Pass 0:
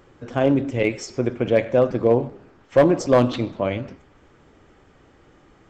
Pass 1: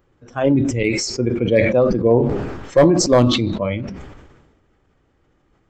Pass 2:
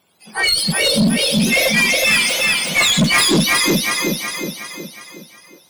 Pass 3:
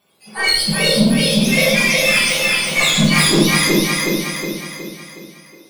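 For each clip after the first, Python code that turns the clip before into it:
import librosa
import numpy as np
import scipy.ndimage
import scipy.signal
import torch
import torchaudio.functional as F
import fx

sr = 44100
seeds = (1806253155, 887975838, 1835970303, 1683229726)

y1 = fx.noise_reduce_blind(x, sr, reduce_db=13)
y1 = fx.low_shelf(y1, sr, hz=130.0, db=7.5)
y1 = fx.sustainer(y1, sr, db_per_s=43.0)
y1 = y1 * 10.0 ** (1.5 / 20.0)
y2 = fx.octave_mirror(y1, sr, pivot_hz=1100.0)
y2 = fx.echo_feedback(y2, sr, ms=366, feedback_pct=48, wet_db=-3.5)
y2 = fx.tube_stage(y2, sr, drive_db=17.0, bias=0.2)
y2 = y2 * 10.0 ** (7.0 / 20.0)
y3 = fx.room_shoebox(y2, sr, seeds[0], volume_m3=140.0, walls='mixed', distance_m=1.3)
y3 = y3 * 10.0 ** (-4.5 / 20.0)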